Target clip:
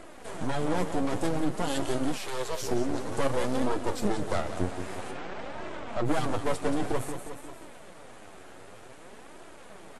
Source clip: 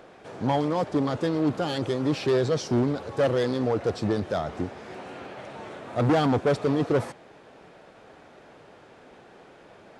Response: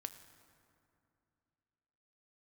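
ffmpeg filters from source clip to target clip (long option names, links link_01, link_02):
-filter_complex "[0:a]asplit=2[link_01][link_02];[link_02]aecho=0:1:178|356|534|712|890:0.316|0.142|0.064|0.0288|0.013[link_03];[link_01][link_03]amix=inputs=2:normalize=0,aexciter=amount=4.9:drive=6.4:freq=7300,asettb=1/sr,asplit=3[link_04][link_05][link_06];[link_04]atrim=end=3.624[link_07];[link_05]atrim=start=3.62:end=4.42,asetpts=PTS-STARTPTS,afade=type=in:duration=0.004:curve=qsin,afade=type=out:start_time=0.796:duration=0.004:curve=qsin,aeval=exprs='0.211*(cos(1*acos(clip(val(0)/0.211,-1,1)))-cos(1*PI/2))+0.0335*(cos(2*acos(clip(val(0)/0.211,-1,1)))-cos(2*PI/2))':channel_layout=same[link_08];[link_06]atrim=start=4.416[link_09];[link_07][link_08]acrossfade=duration=0.004:curve1=hsin:curve2=qsin[link_10];[link_10][link_09]acrossfade=duration=0.004:curve1=qsin:curve2=hsin,alimiter=limit=-20dB:level=0:latency=1:release=499,asplit=3[link_11][link_12][link_13];[link_11]afade=type=out:start_time=2.17:duration=0.02[link_14];[link_12]highpass=frequency=500:width=0.5412,highpass=frequency=500:width=1.3066,afade=type=in:start_time=2.17:duration=0.02,afade=type=out:start_time=2.61:duration=0.02[link_15];[link_13]afade=type=in:start_time=2.61:duration=0.02[link_16];[link_14][link_15][link_16]amix=inputs=3:normalize=0,asettb=1/sr,asplit=3[link_17][link_18][link_19];[link_17]atrim=end=5.114[link_20];[link_18]atrim=start=5.11:end=6.08,asetpts=PTS-STARTPTS,afade=type=in:duration=0.004:curve=qsin,afade=type=out:start_time=0.966:duration=0.004:curve=qsin,adynamicsmooth=sensitivity=6:basefreq=3700[link_21];[link_19]atrim=start=6.076[link_22];[link_20][link_21]acrossfade=duration=0.004:curve1=hsin:curve2=qsin[link_23];[link_23][link_22]acrossfade=duration=0.004:curve1=qsin:curve2=hsin,aeval=exprs='max(val(0),0)':channel_layout=same,flanger=delay=3:depth=8:regen=36:speed=0.53:shape=sinusoidal,volume=9dB" -ar 32000 -c:a wmav2 -b:a 64k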